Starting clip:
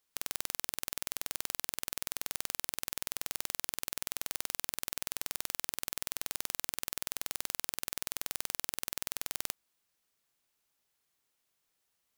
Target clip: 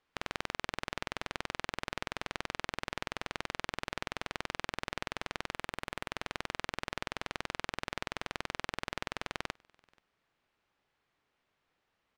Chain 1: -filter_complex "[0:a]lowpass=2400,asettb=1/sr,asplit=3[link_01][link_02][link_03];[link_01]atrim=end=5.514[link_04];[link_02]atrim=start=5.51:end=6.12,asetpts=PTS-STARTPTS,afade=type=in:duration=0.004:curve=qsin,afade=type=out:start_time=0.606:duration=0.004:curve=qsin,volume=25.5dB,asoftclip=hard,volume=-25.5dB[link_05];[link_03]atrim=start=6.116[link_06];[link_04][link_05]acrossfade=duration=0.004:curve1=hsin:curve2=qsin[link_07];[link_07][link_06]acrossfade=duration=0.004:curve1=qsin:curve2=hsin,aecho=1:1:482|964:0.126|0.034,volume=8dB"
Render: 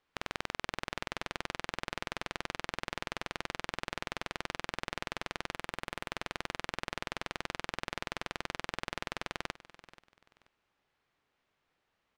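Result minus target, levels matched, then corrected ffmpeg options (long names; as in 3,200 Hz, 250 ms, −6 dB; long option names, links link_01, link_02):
echo-to-direct +12 dB
-filter_complex "[0:a]lowpass=2400,asettb=1/sr,asplit=3[link_01][link_02][link_03];[link_01]atrim=end=5.514[link_04];[link_02]atrim=start=5.51:end=6.12,asetpts=PTS-STARTPTS,afade=type=in:duration=0.004:curve=qsin,afade=type=out:start_time=0.606:duration=0.004:curve=qsin,volume=25.5dB,asoftclip=hard,volume=-25.5dB[link_05];[link_03]atrim=start=6.116[link_06];[link_04][link_05]acrossfade=duration=0.004:curve1=hsin:curve2=qsin[link_07];[link_07][link_06]acrossfade=duration=0.004:curve1=qsin:curve2=hsin,aecho=1:1:482:0.0335,volume=8dB"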